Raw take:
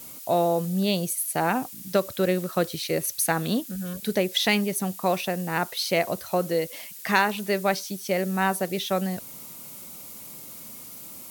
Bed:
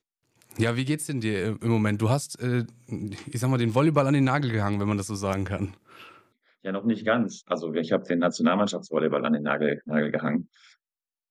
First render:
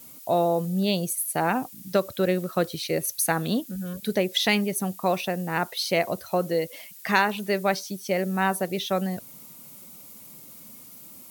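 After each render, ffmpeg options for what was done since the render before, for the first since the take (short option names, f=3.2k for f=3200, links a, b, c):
-af "afftdn=nr=6:nf=-42"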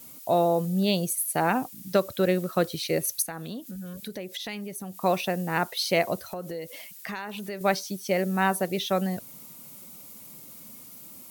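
-filter_complex "[0:a]asettb=1/sr,asplit=3[a][b][c];[a]atrim=end=3.224[d];[b]atrim=start=3.22:end=5.01,asetpts=PTS-STARTPTS,afade=t=in:d=0.004:c=qsin,afade=t=out:st=1.786:d=0.004:c=qsin,acompressor=threshold=-36dB:ratio=3:attack=3.2:release=140:knee=1:detection=peak[e];[c]atrim=start=5.006[f];[d][e]acrossfade=d=0.004:c1=hsin:c2=qsin[g];[g][f]acrossfade=d=0.004:c1=qsin:c2=hsin,asettb=1/sr,asplit=3[h][i][j];[h]atrim=end=6.314[k];[i]atrim=start=6.31:end=7.61,asetpts=PTS-STARTPTS,afade=t=in:d=0.004:c=qsin,afade=t=out:st=1.296:d=0.004:c=qsin,acompressor=threshold=-32dB:ratio=5:attack=3.2:release=140:knee=1:detection=peak[l];[j]atrim=start=7.606[m];[k][l]acrossfade=d=0.004:c1=hsin:c2=qsin[n];[n][m]acrossfade=d=0.004:c1=qsin:c2=hsin"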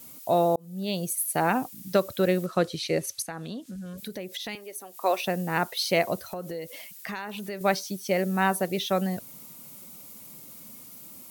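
-filter_complex "[0:a]asettb=1/sr,asplit=3[a][b][c];[a]atrim=end=2.464[d];[b]atrim=start=2.46:end=3.98,asetpts=PTS-STARTPTS,afade=t=in:d=0.004:c=qsin,afade=t=out:st=1.516:d=0.004:c=qsin,lowpass=8.1k[e];[c]atrim=start=3.976[f];[d][e]acrossfade=d=0.004:c1=hsin:c2=qsin[g];[g][f]acrossfade=d=0.004:c1=qsin:c2=hsin,asettb=1/sr,asplit=3[h][i][j];[h]atrim=end=4.554[k];[i]atrim=start=4.55:end=5.25,asetpts=PTS-STARTPTS,afade=t=in:d=0.004:c=qsin,afade=t=out:st=0.696:d=0.004:c=qsin,highpass=f=350:w=0.5412,highpass=f=350:w=1.3066[l];[j]atrim=start=5.246[m];[k][l]acrossfade=d=0.004:c1=hsin:c2=qsin[n];[n][m]acrossfade=d=0.004:c1=qsin:c2=hsin,asplit=2[o][p];[o]atrim=end=0.56,asetpts=PTS-STARTPTS,afade=t=out:st=0.556:d=0.004:c=hsin[q];[p]atrim=start=0.56,asetpts=PTS-STARTPTS,afade=t=in:d=0.65[r];[q][r]concat=n=2:v=0:a=1"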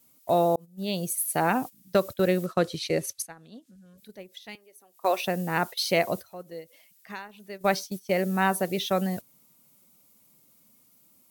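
-af "agate=range=-15dB:threshold=-33dB:ratio=16:detection=peak"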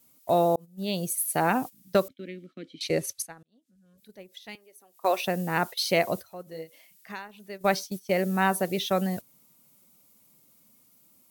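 -filter_complex "[0:a]asettb=1/sr,asplit=3[a][b][c];[a]atrim=end=2.084[d];[b]atrim=start=2.08:end=2.81,asetpts=PTS-STARTPTS,afade=t=in:d=0.004:c=qsin,afade=t=out:st=0.726:d=0.004:c=qsin,asplit=3[e][f][g];[e]bandpass=f=270:t=q:w=8,volume=0dB[h];[f]bandpass=f=2.29k:t=q:w=8,volume=-6dB[i];[g]bandpass=f=3.01k:t=q:w=8,volume=-9dB[j];[h][i][j]amix=inputs=3:normalize=0[k];[c]atrim=start=2.806[l];[d][k]acrossfade=d=0.004:c1=hsin:c2=qsin[m];[m][l]acrossfade=d=0.004:c1=qsin:c2=hsin,asettb=1/sr,asplit=3[n][o][p];[n]atrim=end=6.444[q];[o]atrim=start=6.44:end=7.12,asetpts=PTS-STARTPTS,afade=t=in:d=0.004:c=qsin,afade=t=out:st=0.676:d=0.004:c=qsin,asplit=2[r][s];[s]adelay=31,volume=-4dB[t];[r][t]amix=inputs=2:normalize=0,atrim=end_sample=29988[u];[p]atrim=start=7.116[v];[q][u]acrossfade=d=0.004:c1=hsin:c2=qsin[w];[w][v]acrossfade=d=0.004:c1=qsin:c2=hsin,asplit=2[x][y];[x]atrim=end=3.43,asetpts=PTS-STARTPTS,afade=t=out:st=3.426:d=0.004:c=hsin[z];[y]atrim=start=3.43,asetpts=PTS-STARTPTS,afade=t=in:d=1.07[aa];[z][aa]concat=n=2:v=0:a=1"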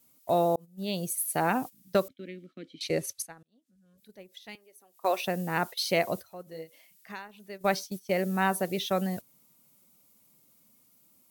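-af "volume=-2.5dB"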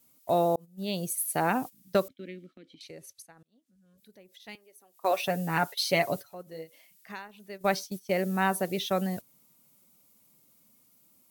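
-filter_complex "[0:a]asettb=1/sr,asplit=3[a][b][c];[a]atrim=end=2.574[d];[b]atrim=start=2.57:end=4.4,asetpts=PTS-STARTPTS,afade=t=in:d=0.004:c=qsin,afade=t=out:st=1.826:d=0.004:c=qsin,acompressor=threshold=-51dB:ratio=2.5:attack=3.2:release=140:knee=1:detection=peak[e];[c]atrim=start=4.396[f];[d][e]acrossfade=d=0.004:c1=hsin:c2=qsin[g];[g][f]acrossfade=d=0.004:c1=qsin:c2=hsin,asettb=1/sr,asplit=3[h][i][j];[h]atrim=end=5.114[k];[i]atrim=start=5.11:end=6.35,asetpts=PTS-STARTPTS,afade=t=in:d=0.004:c=qsin,afade=t=out:st=1.236:d=0.004:c=qsin,aecho=1:1:7:0.58,atrim=end_sample=54684[l];[j]atrim=start=6.346[m];[k][l]acrossfade=d=0.004:c1=hsin:c2=qsin[n];[n][m]acrossfade=d=0.004:c1=qsin:c2=hsin"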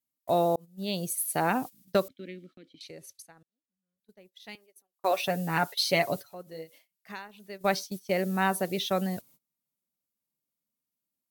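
-af "agate=range=-25dB:threshold=-55dB:ratio=16:detection=peak,equalizer=f=4.1k:t=o:w=0.77:g=2.5"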